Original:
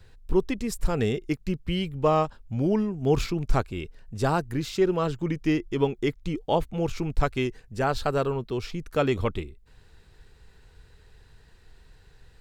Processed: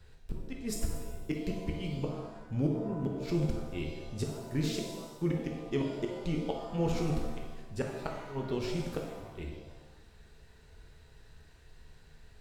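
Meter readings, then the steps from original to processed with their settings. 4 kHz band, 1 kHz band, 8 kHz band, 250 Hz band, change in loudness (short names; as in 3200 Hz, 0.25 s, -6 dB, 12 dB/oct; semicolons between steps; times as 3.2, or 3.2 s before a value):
-8.0 dB, -14.5 dB, -3.5 dB, -6.5 dB, -8.5 dB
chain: flipped gate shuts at -16 dBFS, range -26 dB; shimmer reverb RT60 1.1 s, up +7 st, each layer -8 dB, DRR 0.5 dB; gain -5 dB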